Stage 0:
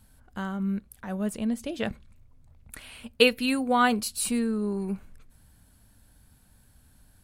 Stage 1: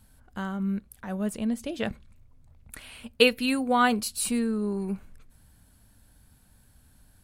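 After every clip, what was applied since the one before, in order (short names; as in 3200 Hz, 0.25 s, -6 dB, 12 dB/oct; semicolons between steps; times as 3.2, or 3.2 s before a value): nothing audible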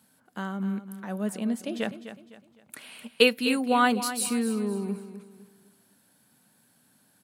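HPF 170 Hz 24 dB/oct; on a send: feedback echo 0.254 s, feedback 36%, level -12 dB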